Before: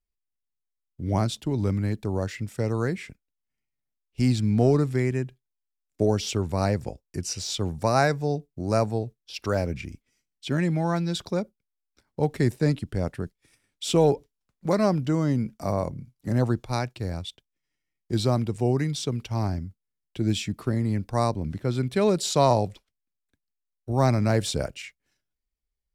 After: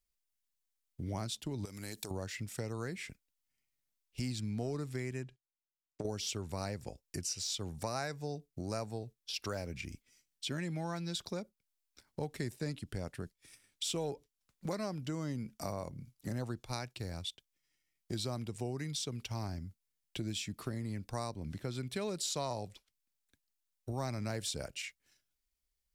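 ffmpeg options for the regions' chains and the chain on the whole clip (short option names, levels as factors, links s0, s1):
-filter_complex "[0:a]asettb=1/sr,asplit=3[s0][s1][s2];[s0]atrim=end=1.654[s3];[s1]atrim=start=1.65:end=2.11,asetpts=PTS-STARTPTS,afade=t=in:d=0.004:c=qsin,afade=t=out:st=0.456:d=0.004:c=qsin,bass=f=250:g=-10,treble=f=4000:g=13,acompressor=threshold=0.0178:ratio=4:attack=3.2:release=140:knee=1:detection=peak[s4];[s2]atrim=start=2.106[s5];[s3][s4]acrossfade=d=0.004:c1=hsin:c2=qsin[s6];[s6][s5]acrossfade=d=0.004:c1=qsin:c2=hsin,asettb=1/sr,asplit=3[s7][s8][s9];[s7]atrim=end=5.234[s10];[s8]atrim=start=5.23:end=6.05,asetpts=PTS-STARTPTS,afade=t=in:d=0.004:c=qsin,afade=t=out:st=0.816:d=0.004:c=qsin,lowpass=7000,agate=range=0.178:threshold=0.00126:ratio=16:release=100:detection=peak,acompressor=threshold=0.0398:ratio=6:attack=3.2:release=140:knee=1:detection=peak[s11];[s9]atrim=start=6.046[s12];[s10][s11]acrossfade=d=0.004:c1=hsin:c2=qsin[s13];[s13][s12]acrossfade=d=0.004:c1=qsin:c2=hsin,highshelf=f=2100:g=9.5,acompressor=threshold=0.0158:ratio=3,volume=0.708"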